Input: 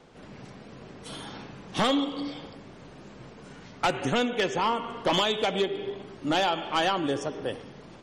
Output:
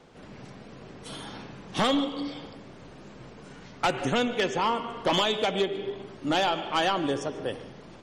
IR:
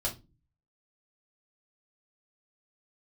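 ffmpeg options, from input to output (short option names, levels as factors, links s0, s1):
-filter_complex "[0:a]asplit=2[s0][s1];[1:a]atrim=start_sample=2205,adelay=136[s2];[s1][s2]afir=irnorm=-1:irlink=0,volume=0.0708[s3];[s0][s3]amix=inputs=2:normalize=0"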